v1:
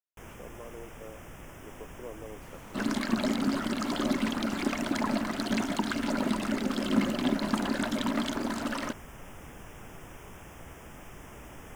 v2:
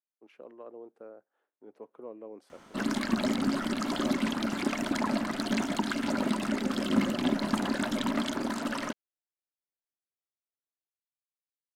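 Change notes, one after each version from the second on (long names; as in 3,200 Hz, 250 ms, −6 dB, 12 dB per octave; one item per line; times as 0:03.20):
first sound: muted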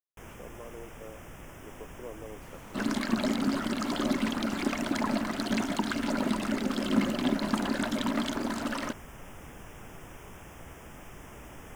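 first sound: unmuted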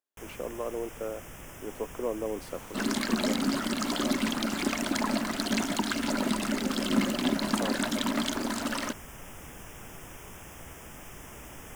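speech +11.5 dB
second sound: add high-pass filter 130 Hz 24 dB per octave
master: add high-shelf EQ 3,400 Hz +8 dB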